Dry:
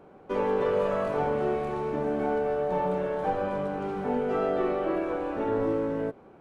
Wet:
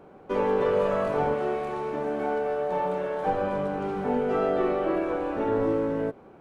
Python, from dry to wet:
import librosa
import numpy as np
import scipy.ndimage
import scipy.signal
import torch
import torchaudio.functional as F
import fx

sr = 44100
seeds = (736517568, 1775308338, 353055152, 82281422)

y = fx.low_shelf(x, sr, hz=260.0, db=-9.5, at=(1.34, 3.26))
y = y * 10.0 ** (2.0 / 20.0)